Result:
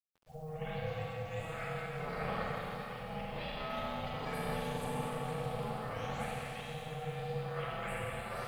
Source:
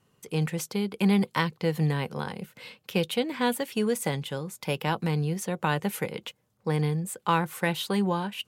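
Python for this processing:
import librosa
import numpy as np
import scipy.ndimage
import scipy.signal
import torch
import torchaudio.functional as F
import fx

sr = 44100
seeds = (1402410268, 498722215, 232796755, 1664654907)

y = fx.spec_delay(x, sr, highs='late', ms=811)
y = fx.highpass(y, sr, hz=320.0, slope=6)
y = fx.high_shelf(y, sr, hz=2400.0, db=-8.5)
y = fx.echo_wet_lowpass(y, sr, ms=65, feedback_pct=51, hz=1300.0, wet_db=-7)
y = fx.over_compress(y, sr, threshold_db=-37.0, ratio=-1.0)
y = fx.high_shelf(y, sr, hz=7200.0, db=-11.0)
y = fx.rev_schroeder(y, sr, rt60_s=3.6, comb_ms=32, drr_db=-6.5)
y = y * np.sin(2.0 * np.pi * 310.0 * np.arange(len(y)) / sr)
y = fx.quant_dither(y, sr, seeds[0], bits=10, dither='none')
y = y * 10.0 ** (-6.5 / 20.0)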